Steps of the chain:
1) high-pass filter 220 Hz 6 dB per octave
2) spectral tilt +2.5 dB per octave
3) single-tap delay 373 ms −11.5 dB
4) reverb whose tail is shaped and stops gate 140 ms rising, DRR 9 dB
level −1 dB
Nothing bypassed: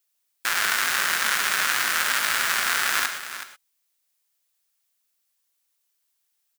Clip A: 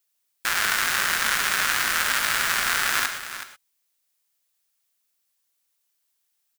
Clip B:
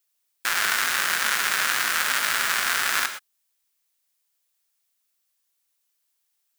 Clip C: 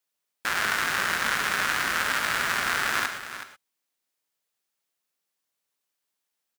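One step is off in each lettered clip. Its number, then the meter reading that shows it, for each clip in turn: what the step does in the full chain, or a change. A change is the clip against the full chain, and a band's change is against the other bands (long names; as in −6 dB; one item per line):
1, 250 Hz band +2.5 dB
3, echo-to-direct ratio −7.0 dB to −9.0 dB
2, 250 Hz band +7.0 dB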